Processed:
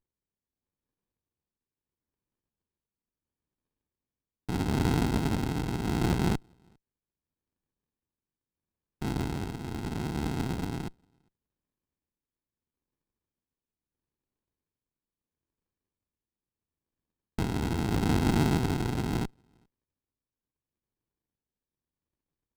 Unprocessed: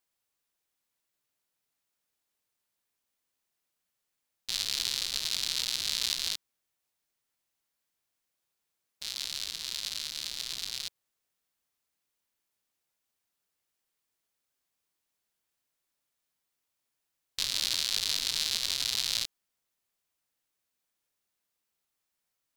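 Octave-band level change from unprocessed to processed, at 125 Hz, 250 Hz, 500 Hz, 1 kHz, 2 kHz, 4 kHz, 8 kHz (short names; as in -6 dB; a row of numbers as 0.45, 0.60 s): +28.5, +30.0, +21.5, +15.0, +1.0, -14.5, -12.0 dB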